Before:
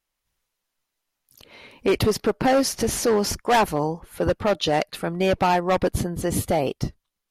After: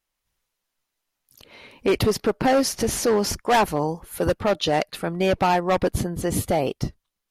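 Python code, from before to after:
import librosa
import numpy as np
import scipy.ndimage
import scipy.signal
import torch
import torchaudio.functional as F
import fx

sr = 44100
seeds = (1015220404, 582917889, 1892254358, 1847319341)

y = fx.high_shelf(x, sr, hz=6700.0, db=11.0, at=(3.88, 4.34))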